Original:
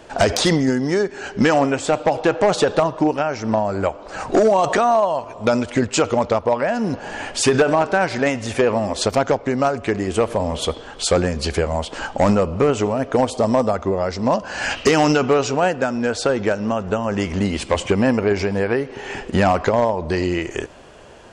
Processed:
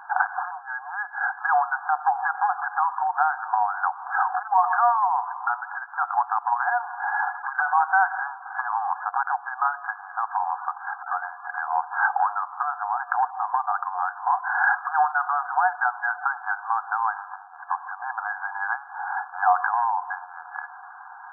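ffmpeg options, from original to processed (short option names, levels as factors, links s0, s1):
-filter_complex "[0:a]asettb=1/sr,asplit=3[s0][s1][s2];[s0]atrim=end=17.354[s3];[s1]atrim=start=17.35:end=18.05,asetpts=PTS-STARTPTS,afade=t=in:d=0.004:c=qsin,afade=t=out:st=0.696:d=0.004:c=qsin,aemphasis=mode=reproduction:type=bsi[s4];[s2]atrim=start=18.046[s5];[s3][s4]acrossfade=d=0.004:c1=hsin:c2=qsin[s6];[s6][s5]acrossfade=d=0.004:c1=qsin:c2=hsin,acompressor=threshold=0.1:ratio=6,afftfilt=real='re*between(b*sr/4096,720,1700)':imag='im*between(b*sr/4096,720,1700)':win_size=4096:overlap=0.75,volume=2.66"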